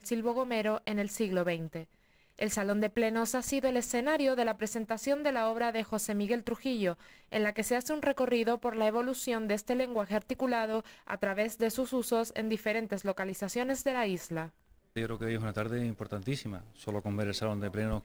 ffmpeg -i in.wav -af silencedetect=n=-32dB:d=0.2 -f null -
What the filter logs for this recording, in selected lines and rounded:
silence_start: 1.80
silence_end: 2.41 | silence_duration: 0.61
silence_start: 6.92
silence_end: 7.33 | silence_duration: 0.41
silence_start: 10.80
silence_end: 11.10 | silence_duration: 0.29
silence_start: 14.44
silence_end: 14.97 | silence_duration: 0.53
silence_start: 16.56
silence_end: 16.87 | silence_duration: 0.31